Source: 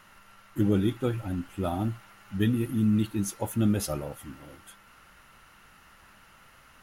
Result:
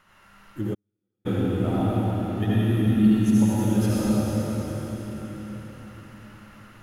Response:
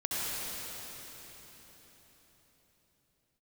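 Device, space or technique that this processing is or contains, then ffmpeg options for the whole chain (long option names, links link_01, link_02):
swimming-pool hall: -filter_complex "[1:a]atrim=start_sample=2205[link_01];[0:a][link_01]afir=irnorm=-1:irlink=0,highshelf=frequency=5300:gain=-6,asplit=3[link_02][link_03][link_04];[link_02]afade=type=out:start_time=0.73:duration=0.02[link_05];[link_03]agate=range=-59dB:threshold=-7dB:ratio=16:detection=peak,afade=type=in:start_time=0.73:duration=0.02,afade=type=out:start_time=1.25:duration=0.02[link_06];[link_04]afade=type=in:start_time=1.25:duration=0.02[link_07];[link_05][link_06][link_07]amix=inputs=3:normalize=0,volume=-3dB"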